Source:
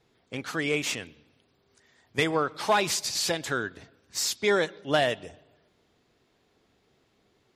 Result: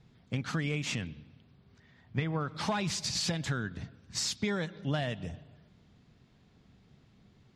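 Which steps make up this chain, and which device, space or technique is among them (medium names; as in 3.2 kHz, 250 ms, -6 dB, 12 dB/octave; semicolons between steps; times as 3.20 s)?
jukebox (low-pass 7 kHz 12 dB/octave; resonant low shelf 260 Hz +11 dB, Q 1.5; compression 6:1, threshold -29 dBFS, peak gain reduction 12 dB); 1.01–2.39 s: low-pass 6 kHz -> 2.9 kHz 12 dB/octave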